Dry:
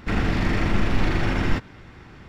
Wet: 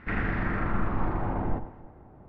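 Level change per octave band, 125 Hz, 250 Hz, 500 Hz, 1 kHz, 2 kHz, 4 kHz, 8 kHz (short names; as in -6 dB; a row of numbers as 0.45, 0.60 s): -7.0 dB, -7.0 dB, -5.5 dB, -2.0 dB, -6.0 dB, under -15 dB, n/a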